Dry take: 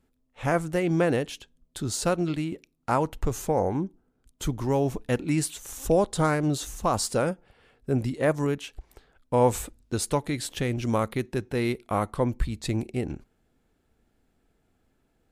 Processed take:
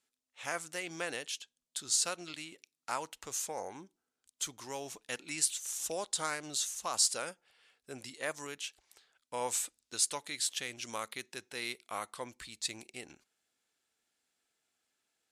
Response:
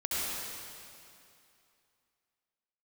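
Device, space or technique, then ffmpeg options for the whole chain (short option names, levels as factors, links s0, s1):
piezo pickup straight into a mixer: -af "lowpass=7300,aderivative,volume=2"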